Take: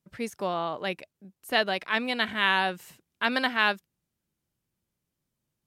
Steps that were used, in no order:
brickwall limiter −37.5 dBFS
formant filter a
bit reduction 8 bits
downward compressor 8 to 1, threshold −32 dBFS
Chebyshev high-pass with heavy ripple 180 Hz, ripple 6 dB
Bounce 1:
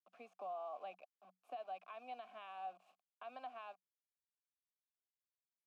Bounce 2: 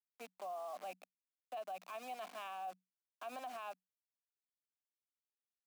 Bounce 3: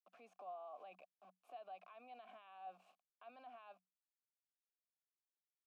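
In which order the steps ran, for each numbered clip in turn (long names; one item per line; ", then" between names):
downward compressor, then bit reduction, then formant filter, then brickwall limiter, then Chebyshev high-pass with heavy ripple
formant filter, then bit reduction, then Chebyshev high-pass with heavy ripple, then brickwall limiter, then downward compressor
bit reduction, then Chebyshev high-pass with heavy ripple, then downward compressor, then brickwall limiter, then formant filter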